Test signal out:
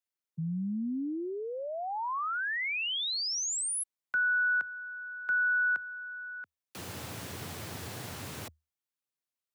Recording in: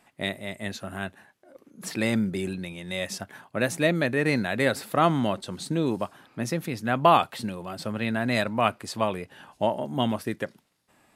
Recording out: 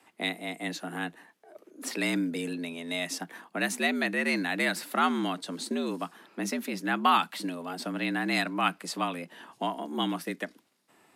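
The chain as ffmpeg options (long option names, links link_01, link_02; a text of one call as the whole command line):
ffmpeg -i in.wav -filter_complex "[0:a]acrossover=split=200|890|1800[link_01][link_02][link_03][link_04];[link_02]acompressor=threshold=-37dB:ratio=6[link_05];[link_01][link_05][link_03][link_04]amix=inputs=4:normalize=0,afreqshift=77" out.wav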